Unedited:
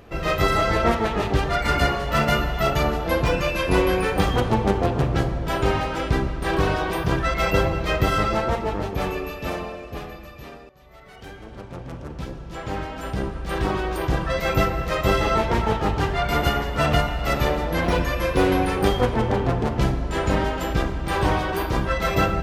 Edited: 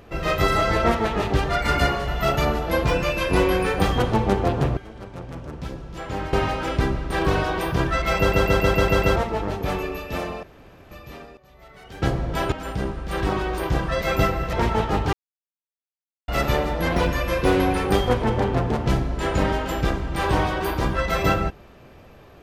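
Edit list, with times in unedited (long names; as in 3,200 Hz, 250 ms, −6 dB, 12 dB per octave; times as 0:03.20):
0:02.08–0:02.46: remove
0:05.15–0:05.65: swap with 0:11.34–0:12.90
0:07.50: stutter in place 0.14 s, 7 plays
0:09.75–0:10.23: fill with room tone
0:14.91–0:15.45: remove
0:16.05–0:17.20: silence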